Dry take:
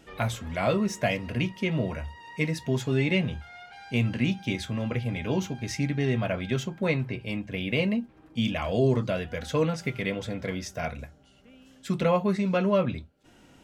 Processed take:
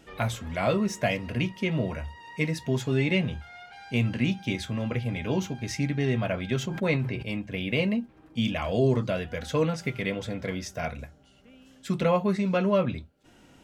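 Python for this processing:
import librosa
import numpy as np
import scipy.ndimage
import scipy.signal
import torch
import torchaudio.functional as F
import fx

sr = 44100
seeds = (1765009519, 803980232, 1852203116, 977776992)

y = fx.sustainer(x, sr, db_per_s=58.0, at=(6.59, 7.23))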